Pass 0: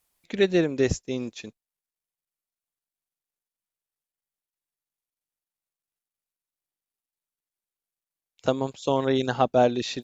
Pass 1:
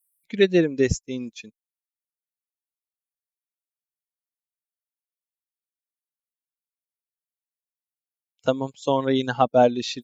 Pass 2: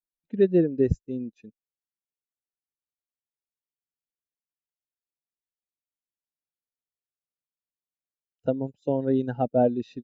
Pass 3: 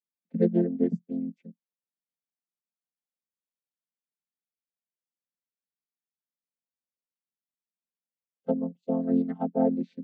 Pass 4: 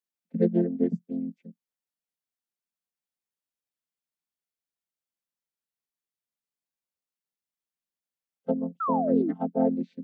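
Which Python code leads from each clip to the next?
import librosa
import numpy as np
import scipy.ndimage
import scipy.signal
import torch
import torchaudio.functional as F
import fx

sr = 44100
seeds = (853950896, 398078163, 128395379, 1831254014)

y1 = fx.bin_expand(x, sr, power=1.5)
y1 = y1 * librosa.db_to_amplitude(4.5)
y2 = np.convolve(y1, np.full(40, 1.0 / 40))[:len(y1)]
y3 = fx.chord_vocoder(y2, sr, chord='major triad', root=53)
y3 = y3 * librosa.db_to_amplitude(-1.5)
y4 = fx.spec_paint(y3, sr, seeds[0], shape='fall', start_s=8.8, length_s=0.53, low_hz=270.0, high_hz=1400.0, level_db=-28.0)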